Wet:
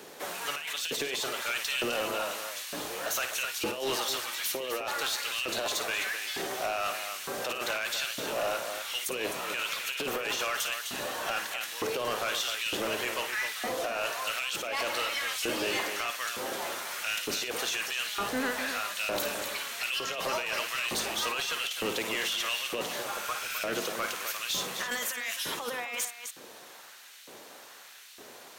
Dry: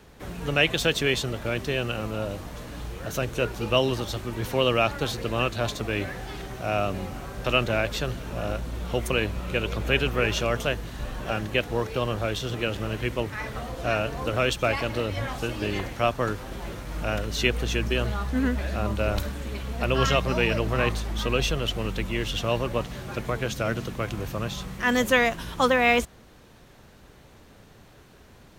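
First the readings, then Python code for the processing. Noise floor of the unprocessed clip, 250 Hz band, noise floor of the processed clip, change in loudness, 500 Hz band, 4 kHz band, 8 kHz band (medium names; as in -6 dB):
-52 dBFS, -12.0 dB, -49 dBFS, -4.5 dB, -8.5 dB, -0.5 dB, +5.5 dB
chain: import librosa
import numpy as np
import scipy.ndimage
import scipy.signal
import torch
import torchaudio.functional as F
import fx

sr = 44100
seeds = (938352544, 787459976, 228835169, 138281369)

y = fx.filter_lfo_highpass(x, sr, shape='saw_up', hz=1.1, low_hz=340.0, high_hz=3100.0, q=1.1)
y = fx.high_shelf(y, sr, hz=4100.0, db=9.5)
y = fx.over_compress(y, sr, threshold_db=-30.0, ratio=-1.0)
y = fx.low_shelf(y, sr, hz=380.0, db=4.5)
y = fx.echo_multitap(y, sr, ms=(55, 257), db=(-11.5, -10.5))
y = 10.0 ** (-25.0 / 20.0) * np.tanh(y / 10.0 ** (-25.0 / 20.0))
y = fx.spec_repair(y, sr, seeds[0], start_s=23.13, length_s=0.44, low_hz=1300.0, high_hz=11000.0, source='both')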